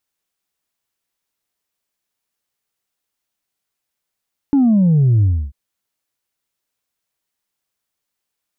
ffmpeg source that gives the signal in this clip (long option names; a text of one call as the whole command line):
ffmpeg -f lavfi -i "aevalsrc='0.316*clip((0.99-t)/0.29,0,1)*tanh(1.12*sin(2*PI*290*0.99/log(65/290)*(exp(log(65/290)*t/0.99)-1)))/tanh(1.12)':duration=0.99:sample_rate=44100" out.wav